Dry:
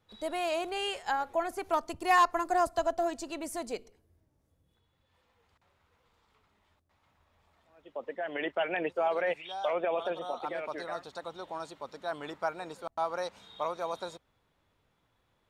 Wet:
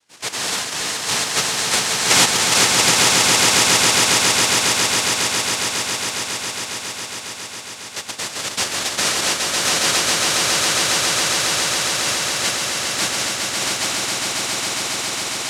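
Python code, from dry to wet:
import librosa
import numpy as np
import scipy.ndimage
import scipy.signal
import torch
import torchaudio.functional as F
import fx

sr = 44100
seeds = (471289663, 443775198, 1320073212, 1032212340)

y = fx.noise_vocoder(x, sr, seeds[0], bands=1)
y = fx.echo_swell(y, sr, ms=137, loudest=8, wet_db=-5.0)
y = F.gain(torch.from_numpy(y), 7.5).numpy()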